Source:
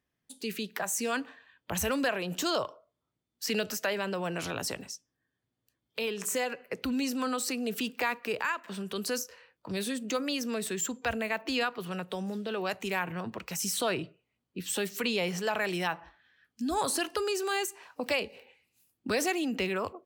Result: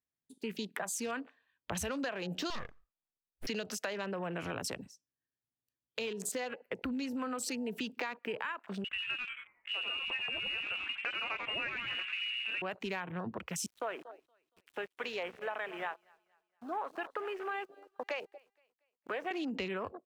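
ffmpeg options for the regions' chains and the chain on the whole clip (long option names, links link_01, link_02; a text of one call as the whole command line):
ffmpeg -i in.wav -filter_complex "[0:a]asettb=1/sr,asplit=3[link_01][link_02][link_03];[link_01]atrim=end=2.504[link_04];[link_02]atrim=start=2.5:end=3.47,asetpts=PTS-STARTPTS,afade=type=in:duration=0.004:curve=qsin,afade=type=out:start_time=0.966:duration=0.004:curve=qsin,lowpass=8500,aeval=exprs='abs(val(0))':channel_layout=same[link_05];[link_03]atrim=start=3.466[link_06];[link_04][link_05]acrossfade=duration=0.004:curve1=hsin:curve2=qsin[link_07];[link_07][link_06]acrossfade=duration=0.004:curve1=qsin:curve2=hsin,asettb=1/sr,asplit=3[link_08][link_09][link_10];[link_08]atrim=end=8.844[link_11];[link_09]atrim=start=8.84:end=12.62,asetpts=PTS-STARTPTS,afade=type=in:duration=0.004:curve=qsin,afade=type=out:start_time=3.776:duration=0.004:curve=qsin,lowpass=frequency=2600:width_type=q:width=0.5098,lowpass=frequency=2600:width_type=q:width=0.6013,lowpass=frequency=2600:width_type=q:width=0.9,lowpass=frequency=2600:width_type=q:width=2.563,afreqshift=-3100,asplit=8[link_12][link_13][link_14][link_15][link_16][link_17][link_18][link_19];[link_13]adelay=90,afreqshift=-130,volume=-5dB[link_20];[link_14]adelay=180,afreqshift=-260,volume=-10.4dB[link_21];[link_15]adelay=270,afreqshift=-390,volume=-15.7dB[link_22];[link_16]adelay=360,afreqshift=-520,volume=-21.1dB[link_23];[link_17]adelay=450,afreqshift=-650,volume=-26.4dB[link_24];[link_18]adelay=540,afreqshift=-780,volume=-31.8dB[link_25];[link_19]adelay=630,afreqshift=-910,volume=-37.1dB[link_26];[link_12][link_20][link_21][link_22][link_23][link_24][link_25][link_26]amix=inputs=8:normalize=0,atrim=end_sample=166698[link_27];[link_10]atrim=start=12.616[link_28];[link_11][link_27]acrossfade=duration=0.004:curve1=hsin:curve2=qsin[link_29];[link_29][link_28]acrossfade=duration=0.004:curve1=qsin:curve2=hsin,asettb=1/sr,asplit=3[link_30][link_31][link_32];[link_30]atrim=end=13.664[link_33];[link_31]atrim=start=13.66:end=19.31,asetpts=PTS-STARTPTS,afade=type=in:duration=0.004:curve=qsin,afade=type=out:start_time=5.646:duration=0.004:curve=qsin,highpass=550,lowpass=2200,aeval=exprs='val(0)*gte(abs(val(0)),0.00708)':channel_layout=same,aecho=1:1:234|468|702|936:0.15|0.0613|0.0252|0.0103,atrim=end_sample=249165[link_34];[link_32]atrim=start=19.306[link_35];[link_33][link_34]acrossfade=duration=0.004:curve1=hsin:curve2=qsin[link_36];[link_36][link_35]acrossfade=duration=0.004:curve1=qsin:curve2=hsin,afwtdn=0.00794,acompressor=threshold=-34dB:ratio=6" out.wav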